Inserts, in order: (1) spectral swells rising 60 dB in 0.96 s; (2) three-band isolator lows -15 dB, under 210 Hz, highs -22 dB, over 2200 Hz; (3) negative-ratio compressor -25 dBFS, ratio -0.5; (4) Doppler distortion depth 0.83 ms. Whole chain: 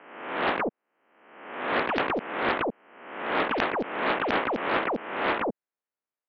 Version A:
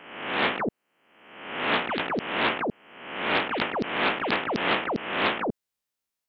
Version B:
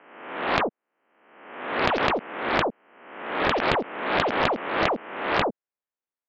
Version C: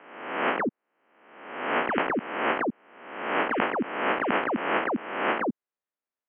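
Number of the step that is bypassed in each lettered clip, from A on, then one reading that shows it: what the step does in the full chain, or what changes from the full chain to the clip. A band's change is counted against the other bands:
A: 2, 4 kHz band +5.5 dB; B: 3, momentary loudness spread change +1 LU; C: 4, 4 kHz band -3.0 dB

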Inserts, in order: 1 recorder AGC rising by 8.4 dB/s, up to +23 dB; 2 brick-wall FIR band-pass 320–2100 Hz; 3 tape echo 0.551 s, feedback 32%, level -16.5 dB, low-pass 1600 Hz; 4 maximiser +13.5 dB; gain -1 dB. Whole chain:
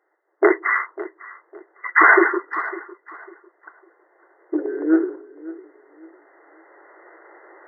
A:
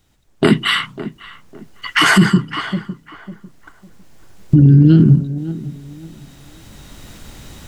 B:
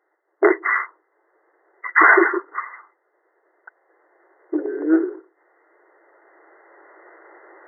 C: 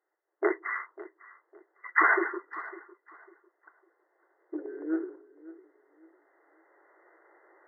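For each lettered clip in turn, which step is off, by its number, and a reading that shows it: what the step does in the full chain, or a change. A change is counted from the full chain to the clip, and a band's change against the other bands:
2, 250 Hz band +11.5 dB; 3, momentary loudness spread change -4 LU; 4, crest factor change +5.0 dB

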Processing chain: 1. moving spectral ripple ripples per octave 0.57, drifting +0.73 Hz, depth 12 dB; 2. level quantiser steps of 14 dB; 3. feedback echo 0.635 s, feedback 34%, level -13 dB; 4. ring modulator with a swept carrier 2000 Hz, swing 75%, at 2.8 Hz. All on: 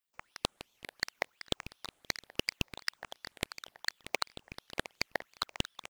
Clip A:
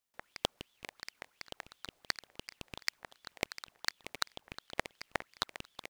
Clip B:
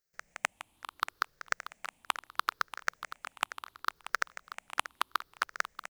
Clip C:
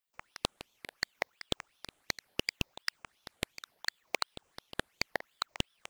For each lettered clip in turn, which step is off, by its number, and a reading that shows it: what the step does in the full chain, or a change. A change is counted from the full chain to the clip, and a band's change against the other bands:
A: 1, 125 Hz band -5.0 dB; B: 4, 250 Hz band -13.5 dB; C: 3, momentary loudness spread change +2 LU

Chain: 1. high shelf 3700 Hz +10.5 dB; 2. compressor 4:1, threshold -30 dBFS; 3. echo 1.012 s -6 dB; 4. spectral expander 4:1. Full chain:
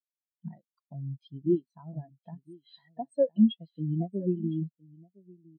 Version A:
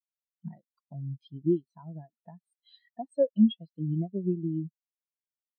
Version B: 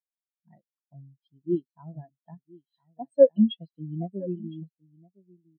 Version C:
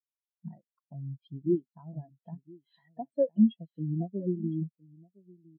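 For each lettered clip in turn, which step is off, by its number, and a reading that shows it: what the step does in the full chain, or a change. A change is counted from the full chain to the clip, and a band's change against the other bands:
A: 3, 1 kHz band -1.5 dB; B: 2, mean gain reduction 7.5 dB; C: 1, loudness change -1.0 LU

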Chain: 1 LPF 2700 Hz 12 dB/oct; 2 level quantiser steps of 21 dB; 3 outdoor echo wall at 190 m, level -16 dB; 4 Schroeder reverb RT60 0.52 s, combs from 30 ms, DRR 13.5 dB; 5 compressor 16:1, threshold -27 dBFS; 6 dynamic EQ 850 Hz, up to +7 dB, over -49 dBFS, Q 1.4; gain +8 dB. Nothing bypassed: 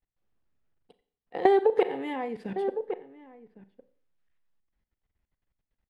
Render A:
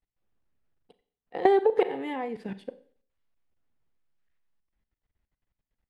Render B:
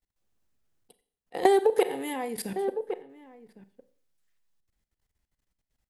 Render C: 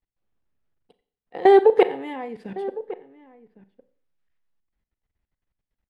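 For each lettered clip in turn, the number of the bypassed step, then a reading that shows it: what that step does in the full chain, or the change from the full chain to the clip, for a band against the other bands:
3, momentary loudness spread change +4 LU; 1, 4 kHz band +5.5 dB; 5, mean gain reduction 2.0 dB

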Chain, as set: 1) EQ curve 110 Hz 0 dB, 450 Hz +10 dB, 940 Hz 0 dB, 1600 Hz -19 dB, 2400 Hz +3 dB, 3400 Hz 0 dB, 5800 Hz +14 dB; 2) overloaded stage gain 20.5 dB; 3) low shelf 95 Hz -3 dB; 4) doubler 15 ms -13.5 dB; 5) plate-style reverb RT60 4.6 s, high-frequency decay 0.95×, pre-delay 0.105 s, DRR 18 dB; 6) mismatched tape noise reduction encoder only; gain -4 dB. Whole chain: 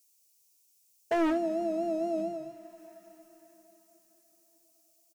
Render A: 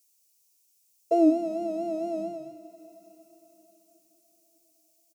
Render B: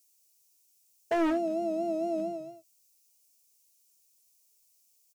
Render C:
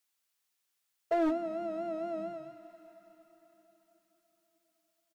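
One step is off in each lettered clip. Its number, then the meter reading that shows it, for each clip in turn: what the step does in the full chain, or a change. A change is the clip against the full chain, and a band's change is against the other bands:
2, distortion -5 dB; 5, momentary loudness spread change -8 LU; 1, momentary loudness spread change -1 LU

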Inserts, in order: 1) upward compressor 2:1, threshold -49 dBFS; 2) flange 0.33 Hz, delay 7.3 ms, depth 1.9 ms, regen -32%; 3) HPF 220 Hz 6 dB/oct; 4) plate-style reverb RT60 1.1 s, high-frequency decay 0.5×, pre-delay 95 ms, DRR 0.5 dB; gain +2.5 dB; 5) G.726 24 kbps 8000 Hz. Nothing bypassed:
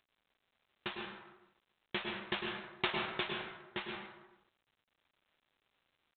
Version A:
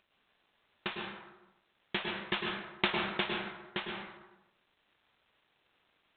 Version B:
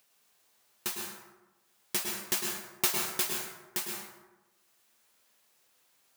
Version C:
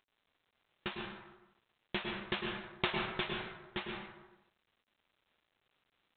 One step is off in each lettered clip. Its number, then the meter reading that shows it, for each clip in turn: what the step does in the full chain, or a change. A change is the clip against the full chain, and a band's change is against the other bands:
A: 2, crest factor change +3.0 dB; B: 5, 4 kHz band +3.5 dB; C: 3, 125 Hz band +4.5 dB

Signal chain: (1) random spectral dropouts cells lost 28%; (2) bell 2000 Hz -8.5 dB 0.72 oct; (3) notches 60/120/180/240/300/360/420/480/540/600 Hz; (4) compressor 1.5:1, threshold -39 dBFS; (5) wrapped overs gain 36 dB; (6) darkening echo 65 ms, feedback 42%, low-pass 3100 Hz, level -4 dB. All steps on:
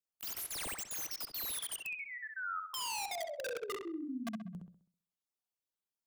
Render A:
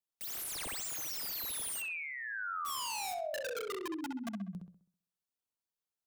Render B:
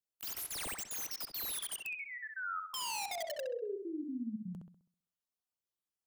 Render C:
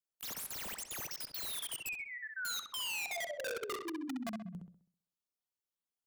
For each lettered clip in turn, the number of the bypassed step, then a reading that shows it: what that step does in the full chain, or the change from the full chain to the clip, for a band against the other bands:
1, 4 kHz band -1.5 dB; 3, 500 Hz band +2.0 dB; 4, 1 kHz band -4.0 dB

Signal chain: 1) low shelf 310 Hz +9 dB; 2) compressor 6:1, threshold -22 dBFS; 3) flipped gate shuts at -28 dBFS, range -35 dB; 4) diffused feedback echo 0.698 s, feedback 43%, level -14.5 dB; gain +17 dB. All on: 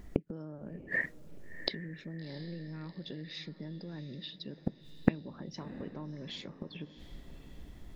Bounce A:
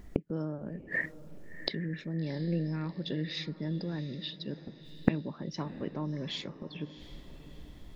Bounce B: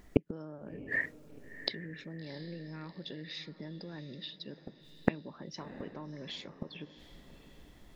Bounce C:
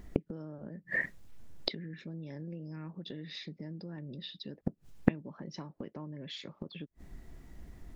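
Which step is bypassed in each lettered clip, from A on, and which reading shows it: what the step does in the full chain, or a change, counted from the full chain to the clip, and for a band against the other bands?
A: 2, crest factor change -3.5 dB; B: 1, 125 Hz band -2.5 dB; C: 4, echo-to-direct -13.5 dB to none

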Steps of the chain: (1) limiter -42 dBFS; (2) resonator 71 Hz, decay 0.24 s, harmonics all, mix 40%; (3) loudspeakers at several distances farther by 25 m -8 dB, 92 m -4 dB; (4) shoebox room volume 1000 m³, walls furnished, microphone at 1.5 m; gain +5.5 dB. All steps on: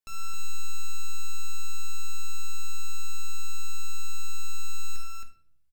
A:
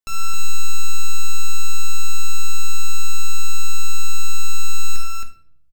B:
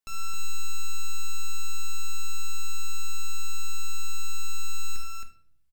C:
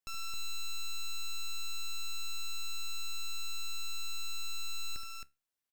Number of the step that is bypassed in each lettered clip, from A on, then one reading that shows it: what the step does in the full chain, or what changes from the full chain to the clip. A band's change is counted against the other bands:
1, mean gain reduction 12.0 dB; 2, loudness change +3.0 LU; 4, echo-to-direct 0.5 dB to -2.5 dB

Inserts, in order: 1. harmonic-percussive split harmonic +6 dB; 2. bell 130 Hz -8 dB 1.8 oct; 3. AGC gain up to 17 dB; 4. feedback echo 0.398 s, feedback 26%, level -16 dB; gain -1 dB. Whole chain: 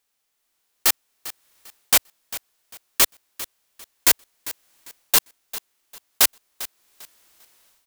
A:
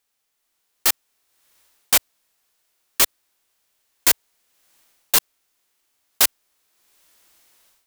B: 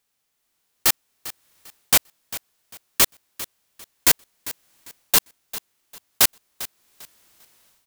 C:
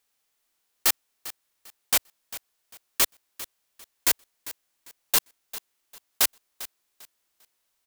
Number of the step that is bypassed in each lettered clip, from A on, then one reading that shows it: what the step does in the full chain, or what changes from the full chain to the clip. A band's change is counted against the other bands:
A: 4, momentary loudness spread change -13 LU; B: 2, 125 Hz band +6.5 dB; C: 3, crest factor change +1.5 dB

